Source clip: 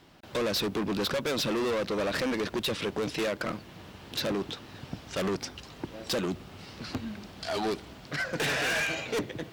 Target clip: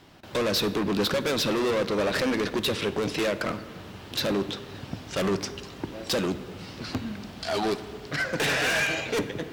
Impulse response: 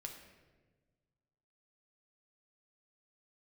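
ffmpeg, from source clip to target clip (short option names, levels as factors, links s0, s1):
-filter_complex "[0:a]asplit=2[s0][s1];[1:a]atrim=start_sample=2205,asetrate=32634,aresample=44100[s2];[s1][s2]afir=irnorm=-1:irlink=0,volume=0.794[s3];[s0][s3]amix=inputs=2:normalize=0"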